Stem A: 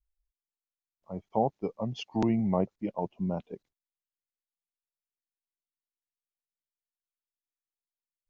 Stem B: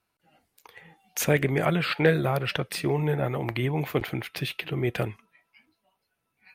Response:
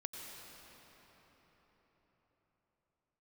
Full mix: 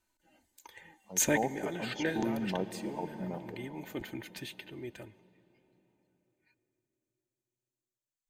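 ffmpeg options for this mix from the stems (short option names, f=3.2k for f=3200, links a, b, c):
-filter_complex "[0:a]equalizer=f=74:t=o:w=1.9:g=-12.5,volume=-7dB,asplit=3[a][b][c];[b]volume=-3.5dB[d];[1:a]aecho=1:1:3.3:0.66,volume=-4dB,afade=t=out:st=2.45:d=0.73:silence=0.446684,afade=t=out:st=4.35:d=0.61:silence=0.398107,asplit=2[e][f];[f]volume=-17.5dB[g];[c]apad=whole_len=288782[h];[e][h]sidechaincompress=threshold=-41dB:ratio=8:attack=16:release=1470[i];[2:a]atrim=start_sample=2205[j];[d][g]amix=inputs=2:normalize=0[k];[k][j]afir=irnorm=-1:irlink=0[l];[a][i][l]amix=inputs=3:normalize=0,superequalizer=8b=0.631:10b=0.447:12b=0.708:15b=2.51"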